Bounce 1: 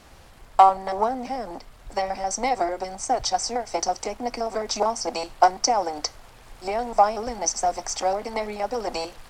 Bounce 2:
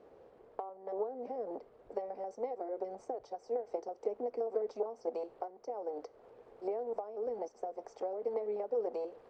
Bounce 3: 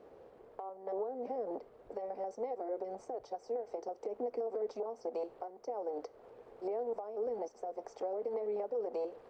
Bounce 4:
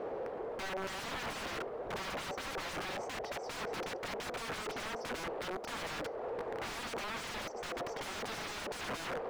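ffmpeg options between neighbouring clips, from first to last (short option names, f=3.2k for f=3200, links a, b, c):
-af "acompressor=threshold=-30dB:ratio=20,bandpass=f=450:t=q:w=4.7:csg=0,volume=5.5dB"
-af "alimiter=level_in=7dB:limit=-24dB:level=0:latency=1:release=73,volume=-7dB,volume=2dB"
-filter_complex "[0:a]aeval=exprs='(mod(200*val(0)+1,2)-1)/200':c=same,asplit=2[a][b];[b]highpass=f=720:p=1,volume=13dB,asoftclip=type=tanh:threshold=-46dB[c];[a][c]amix=inputs=2:normalize=0,lowpass=f=1.2k:p=1,volume=-6dB,volume=15.5dB"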